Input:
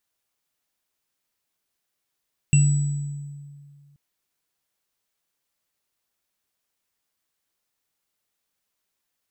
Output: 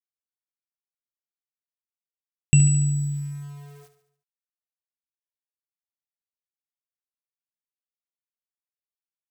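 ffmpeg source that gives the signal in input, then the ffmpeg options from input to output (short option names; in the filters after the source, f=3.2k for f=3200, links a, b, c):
-f lavfi -i "aevalsrc='0.251*pow(10,-3*t/2.08)*sin(2*PI*143*t)+0.0668*pow(10,-3*t/0.23)*sin(2*PI*2730*t)+0.0794*pow(10,-3*t/1.24)*sin(2*PI*7860*t)':d=1.43:s=44100"
-filter_complex "[0:a]asplit=2[a][b];[b]acompressor=threshold=-28dB:ratio=6,volume=1dB[c];[a][c]amix=inputs=2:normalize=0,aeval=exprs='val(0)*gte(abs(val(0)),0.00631)':c=same,aecho=1:1:72|144|216|288|360:0.251|0.128|0.0653|0.0333|0.017"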